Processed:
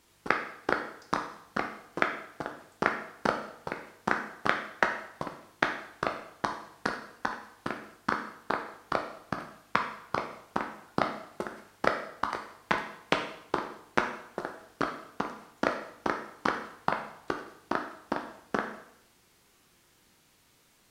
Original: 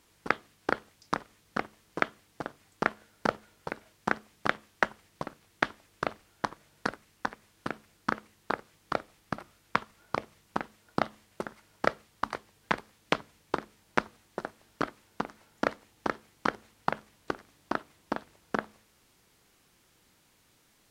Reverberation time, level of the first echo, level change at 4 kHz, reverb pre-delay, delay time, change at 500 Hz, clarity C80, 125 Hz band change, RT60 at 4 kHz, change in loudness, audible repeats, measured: 0.75 s, none, +1.5 dB, 5 ms, none, +1.5 dB, 10.5 dB, +0.5 dB, 0.70 s, +1.5 dB, none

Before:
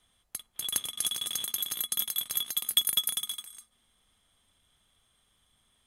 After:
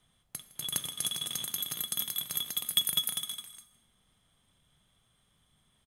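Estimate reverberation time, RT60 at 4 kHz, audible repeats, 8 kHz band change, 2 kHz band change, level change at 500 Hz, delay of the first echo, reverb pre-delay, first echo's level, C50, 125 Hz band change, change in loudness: 0.95 s, 0.85 s, 1, -2.5 dB, -1.0 dB, +1.0 dB, 0.16 s, 16 ms, -21.0 dB, 13.5 dB, n/a, -2.5 dB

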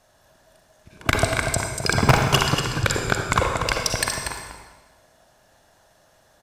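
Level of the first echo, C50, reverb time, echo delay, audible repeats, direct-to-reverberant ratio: -7.5 dB, 1.5 dB, 1.2 s, 0.238 s, 1, 1.0 dB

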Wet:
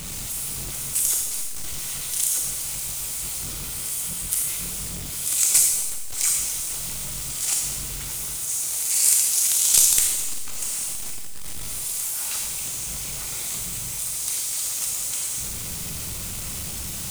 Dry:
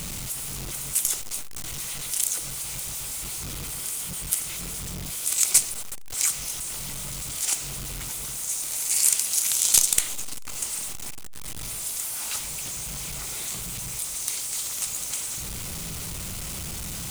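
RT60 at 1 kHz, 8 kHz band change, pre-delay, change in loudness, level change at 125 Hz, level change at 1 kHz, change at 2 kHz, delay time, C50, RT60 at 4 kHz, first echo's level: 1.3 s, +3.5 dB, 26 ms, +3.5 dB, 0.0 dB, 0.0 dB, +0.5 dB, none, 5.5 dB, 1.1 s, none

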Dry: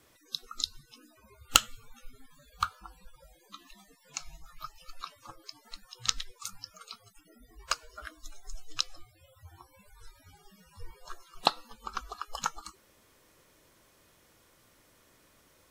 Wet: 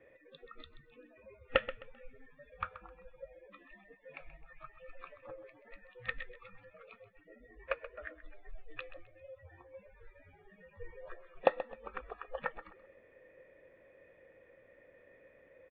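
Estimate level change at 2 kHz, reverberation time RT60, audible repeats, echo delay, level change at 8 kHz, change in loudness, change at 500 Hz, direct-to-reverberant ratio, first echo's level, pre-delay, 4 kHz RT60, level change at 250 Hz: -1.5 dB, none, 2, 0.13 s, under -40 dB, -7.5 dB, +9.0 dB, none, -14.0 dB, none, none, -2.5 dB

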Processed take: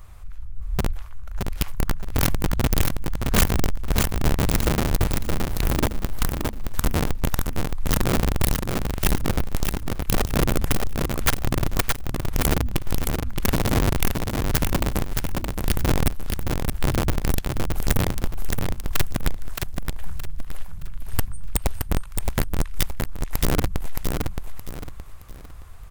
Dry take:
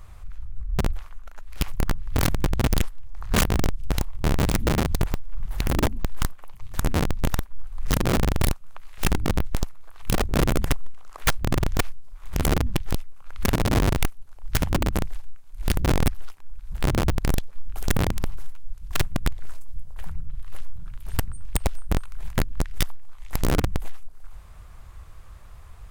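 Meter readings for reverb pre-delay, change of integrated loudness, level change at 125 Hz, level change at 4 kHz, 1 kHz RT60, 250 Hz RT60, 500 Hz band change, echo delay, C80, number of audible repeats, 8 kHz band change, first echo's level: none, +1.5 dB, +1.5 dB, +2.0 dB, none, none, +1.5 dB, 0.62 s, none, 4, +3.5 dB, -4.5 dB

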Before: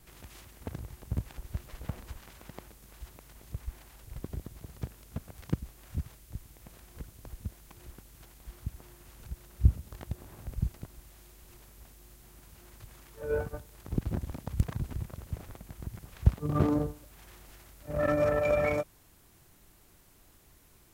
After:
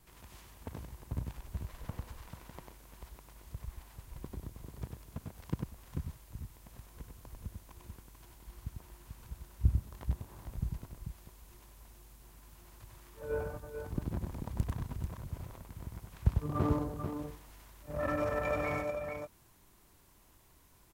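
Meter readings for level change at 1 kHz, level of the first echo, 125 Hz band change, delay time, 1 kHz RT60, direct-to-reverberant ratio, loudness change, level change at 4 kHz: -1.5 dB, -4.5 dB, -4.0 dB, 97 ms, none, none, -5.0 dB, -3.5 dB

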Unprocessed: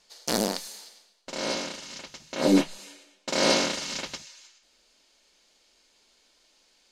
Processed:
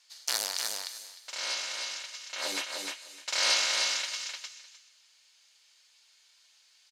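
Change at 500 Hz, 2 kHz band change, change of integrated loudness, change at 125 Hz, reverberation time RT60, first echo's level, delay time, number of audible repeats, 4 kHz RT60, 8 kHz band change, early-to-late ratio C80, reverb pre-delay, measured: -15.0 dB, +0.5 dB, -3.5 dB, under -30 dB, none, -4.0 dB, 0.304 s, 2, none, +1.5 dB, none, none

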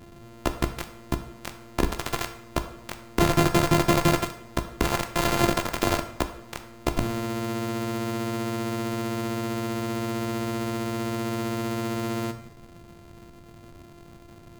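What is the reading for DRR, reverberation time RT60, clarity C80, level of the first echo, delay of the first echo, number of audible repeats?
7.0 dB, 0.70 s, 13.5 dB, none, none, none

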